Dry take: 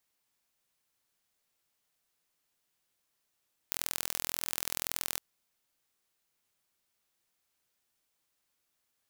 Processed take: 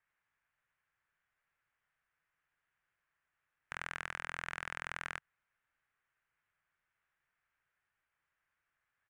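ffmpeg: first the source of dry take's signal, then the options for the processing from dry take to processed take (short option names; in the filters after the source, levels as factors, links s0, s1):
-f lavfi -i "aevalsrc='0.631*eq(mod(n,1055),0)*(0.5+0.5*eq(mod(n,2110),0))':d=1.48:s=44100"
-af "firequalizer=gain_entry='entry(140,0);entry(220,-10);entry(1600,8);entry(4200,-20)':delay=0.05:min_phase=1,aresample=22050,aresample=44100"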